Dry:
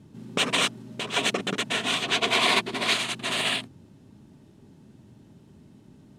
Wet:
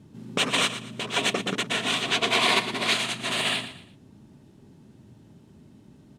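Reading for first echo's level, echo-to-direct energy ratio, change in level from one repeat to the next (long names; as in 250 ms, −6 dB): −12.0 dB, −11.5 dB, −10.0 dB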